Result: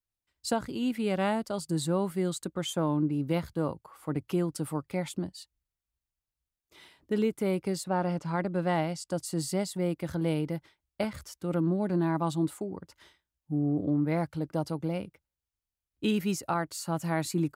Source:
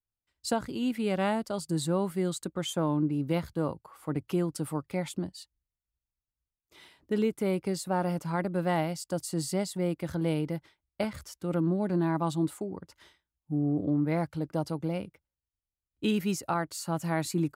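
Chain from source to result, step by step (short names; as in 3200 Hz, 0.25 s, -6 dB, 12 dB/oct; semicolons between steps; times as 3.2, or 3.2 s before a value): 7.83–9.24 LPF 5200 Hz -> 11000 Hz 12 dB/oct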